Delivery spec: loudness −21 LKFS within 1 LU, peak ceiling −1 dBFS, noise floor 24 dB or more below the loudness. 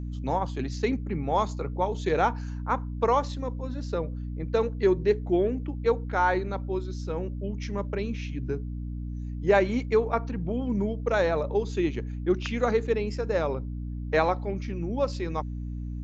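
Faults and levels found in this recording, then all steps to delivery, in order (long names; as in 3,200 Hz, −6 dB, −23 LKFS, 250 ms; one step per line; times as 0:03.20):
mains hum 60 Hz; hum harmonics up to 300 Hz; level of the hum −31 dBFS; integrated loudness −28.0 LKFS; sample peak −9.0 dBFS; target loudness −21.0 LKFS
→ hum removal 60 Hz, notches 5
level +7 dB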